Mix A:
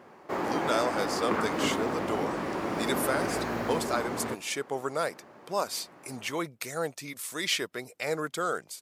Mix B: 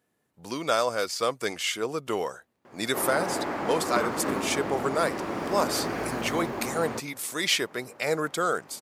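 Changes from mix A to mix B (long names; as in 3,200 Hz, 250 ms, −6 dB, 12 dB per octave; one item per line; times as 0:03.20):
speech +4.0 dB
background: entry +2.65 s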